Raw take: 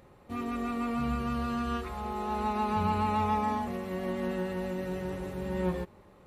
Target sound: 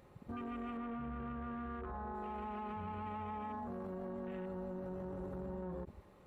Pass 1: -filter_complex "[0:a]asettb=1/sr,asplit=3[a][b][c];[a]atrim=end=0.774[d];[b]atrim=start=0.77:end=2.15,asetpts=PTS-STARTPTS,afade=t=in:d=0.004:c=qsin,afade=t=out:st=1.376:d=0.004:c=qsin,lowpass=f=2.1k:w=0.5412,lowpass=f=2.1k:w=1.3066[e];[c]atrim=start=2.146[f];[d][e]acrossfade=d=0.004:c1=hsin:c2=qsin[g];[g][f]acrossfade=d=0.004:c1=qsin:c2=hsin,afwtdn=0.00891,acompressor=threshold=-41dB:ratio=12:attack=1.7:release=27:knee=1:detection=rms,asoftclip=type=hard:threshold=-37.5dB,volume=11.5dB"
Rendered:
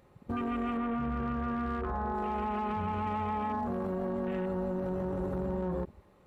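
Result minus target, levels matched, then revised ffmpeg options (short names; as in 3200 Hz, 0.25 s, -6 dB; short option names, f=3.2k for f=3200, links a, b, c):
compressor: peak gain reduction -10 dB
-filter_complex "[0:a]asettb=1/sr,asplit=3[a][b][c];[a]atrim=end=0.774[d];[b]atrim=start=0.77:end=2.15,asetpts=PTS-STARTPTS,afade=t=in:d=0.004:c=qsin,afade=t=out:st=1.376:d=0.004:c=qsin,lowpass=f=2.1k:w=0.5412,lowpass=f=2.1k:w=1.3066[e];[c]atrim=start=2.146[f];[d][e]acrossfade=d=0.004:c1=hsin:c2=qsin[g];[g][f]acrossfade=d=0.004:c1=qsin:c2=hsin,afwtdn=0.00891,acompressor=threshold=-52dB:ratio=12:attack=1.7:release=27:knee=1:detection=rms,asoftclip=type=hard:threshold=-37.5dB,volume=11.5dB"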